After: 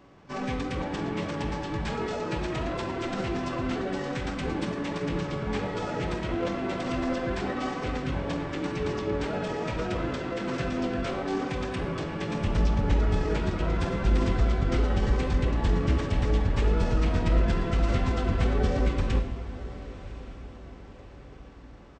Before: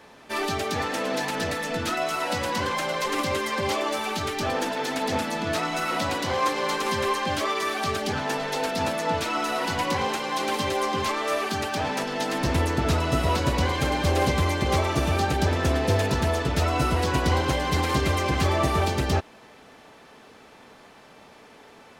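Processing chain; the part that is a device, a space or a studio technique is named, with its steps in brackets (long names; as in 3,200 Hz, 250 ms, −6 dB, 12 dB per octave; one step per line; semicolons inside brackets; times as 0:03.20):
monster voice (pitch shifter −7.5 semitones; formants moved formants −3.5 semitones; low-shelf EQ 120 Hz +7 dB; convolution reverb RT60 1.2 s, pre-delay 34 ms, DRR 7 dB)
0:13.23–0:14.04: high-pass filter 68 Hz
feedback delay with all-pass diffusion 1,087 ms, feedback 45%, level −15 dB
level −5.5 dB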